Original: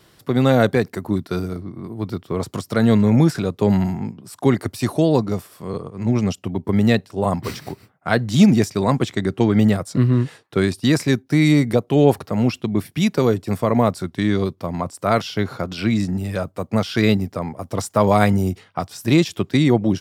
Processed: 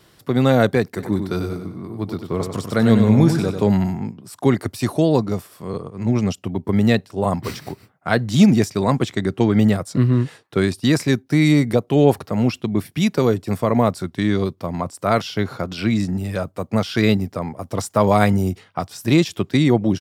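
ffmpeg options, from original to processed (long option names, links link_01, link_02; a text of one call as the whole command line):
ffmpeg -i in.wav -filter_complex "[0:a]asplit=3[link_01][link_02][link_03];[link_01]afade=type=out:start_time=0.97:duration=0.02[link_04];[link_02]aecho=1:1:95|190|285|380|475:0.447|0.174|0.0679|0.0265|0.0103,afade=type=in:start_time=0.97:duration=0.02,afade=type=out:start_time=3.67:duration=0.02[link_05];[link_03]afade=type=in:start_time=3.67:duration=0.02[link_06];[link_04][link_05][link_06]amix=inputs=3:normalize=0" out.wav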